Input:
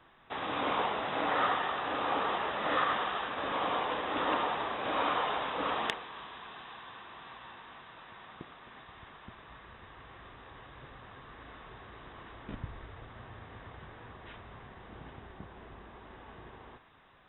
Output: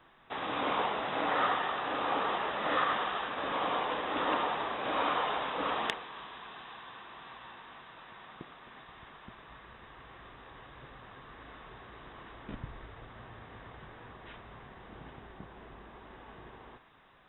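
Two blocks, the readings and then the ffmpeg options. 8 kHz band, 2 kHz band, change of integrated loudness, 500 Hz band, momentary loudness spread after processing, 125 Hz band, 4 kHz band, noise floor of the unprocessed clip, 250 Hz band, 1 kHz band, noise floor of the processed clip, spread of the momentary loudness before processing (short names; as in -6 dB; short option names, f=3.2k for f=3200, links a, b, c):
n/a, 0.0 dB, 0.0 dB, 0.0 dB, 21 LU, -1.5 dB, 0.0 dB, -54 dBFS, 0.0 dB, 0.0 dB, -54 dBFS, 20 LU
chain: -af "equalizer=f=85:t=o:w=0.42:g=-7.5"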